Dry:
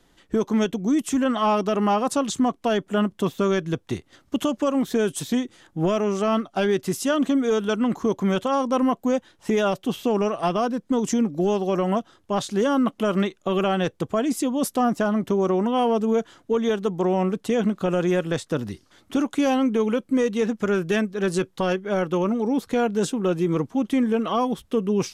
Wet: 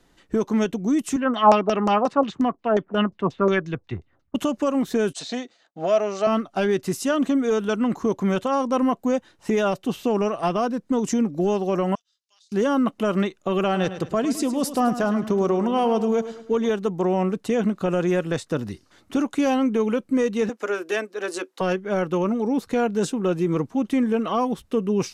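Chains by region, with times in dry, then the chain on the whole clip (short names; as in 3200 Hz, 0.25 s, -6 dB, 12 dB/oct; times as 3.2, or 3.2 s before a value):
1.16–4.35 LFO low-pass saw down 5.6 Hz 570–6500 Hz + three-band expander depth 100%
5.13–6.27 expander -45 dBFS + speaker cabinet 340–7300 Hz, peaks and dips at 340 Hz -9 dB, 670 Hz +9 dB, 960 Hz -4 dB, 4200 Hz +8 dB
11.95–12.52 ladder band-pass 5500 Hz, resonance 35% + compressor, threshold -55 dBFS
13.64–16.66 bell 4700 Hz +4.5 dB 0.65 oct + feedback echo 0.106 s, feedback 42%, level -12 dB
20.49–21.61 steep high-pass 290 Hz + notch 380 Hz, Q 11
whole clip: high shelf 11000 Hz -4 dB; notch 3300 Hz, Q 13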